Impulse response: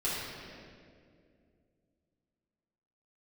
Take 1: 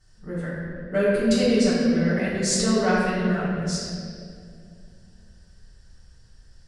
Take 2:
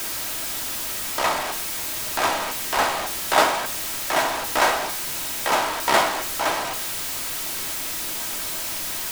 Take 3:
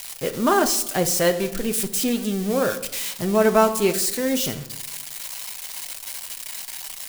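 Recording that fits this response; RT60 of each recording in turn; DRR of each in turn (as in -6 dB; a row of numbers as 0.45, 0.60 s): 1; 2.3, 0.45, 0.90 s; -10.0, 5.0, 6.0 dB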